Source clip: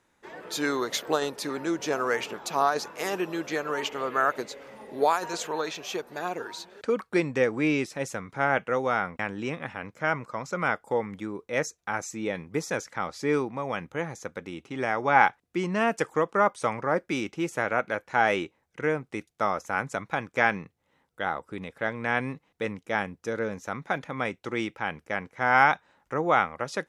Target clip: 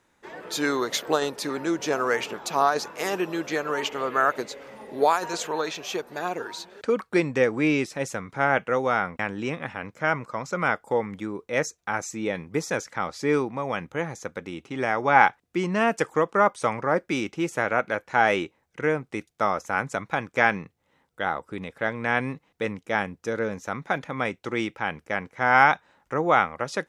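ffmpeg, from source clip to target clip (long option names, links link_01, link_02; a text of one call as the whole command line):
ffmpeg -i in.wav -af "equalizer=frequency=11000:width=4.6:gain=-2.5,volume=2.5dB" out.wav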